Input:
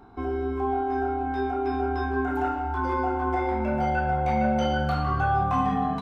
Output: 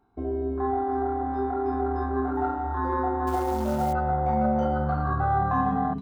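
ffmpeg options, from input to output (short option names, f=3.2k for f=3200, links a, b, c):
-filter_complex "[0:a]asettb=1/sr,asplit=3[a][b][c];[a]atrim=end=4.654[d];[b]atrim=start=4.65:end=5.33,asetpts=PTS-STARTPTS,afade=t=in:d=0.004:c=qsin,afade=t=out:st=0.676:d=0.004:c=qsin,lowpass=f=3.1k:p=1[e];[c]atrim=start=5.326[f];[d][e]acrossfade=d=0.004:c1=hsin:c2=qsin[g];[g][f]acrossfade=d=0.004:c1=qsin:c2=hsin,afwtdn=0.0398,asettb=1/sr,asplit=3[h][i][j];[h]atrim=end=3.274[k];[i]atrim=start=3.27:end=3.93,asetpts=PTS-STARTPTS,afade=t=in:d=0.004:c=qsin,afade=t=out:st=0.656:d=0.004:c=qsin,acrusher=bits=5:mode=log:mix=0:aa=0.000001[l];[j]atrim=start=3.926[m];[k][l]acrossfade=d=0.004:c1=hsin:c2=qsin[n];[n][m]acrossfade=d=0.004:c1=qsin:c2=hsin"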